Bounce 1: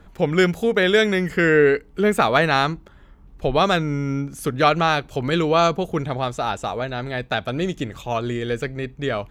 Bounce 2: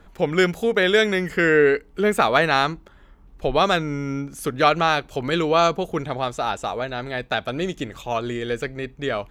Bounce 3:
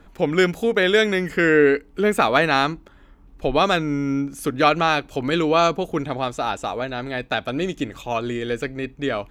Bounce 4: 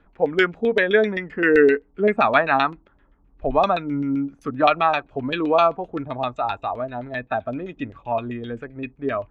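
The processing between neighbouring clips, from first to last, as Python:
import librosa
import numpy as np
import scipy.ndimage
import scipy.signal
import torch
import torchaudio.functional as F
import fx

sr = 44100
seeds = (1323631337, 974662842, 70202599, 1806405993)

y1 = fx.peak_eq(x, sr, hz=110.0, db=-5.5, octaves=2.1)
y2 = fx.small_body(y1, sr, hz=(280.0, 2500.0), ring_ms=45, db=6)
y3 = fx.filter_lfo_lowpass(y2, sr, shape='saw_down', hz=7.7, low_hz=540.0, high_hz=3400.0, q=1.4)
y3 = fx.noise_reduce_blind(y3, sr, reduce_db=9)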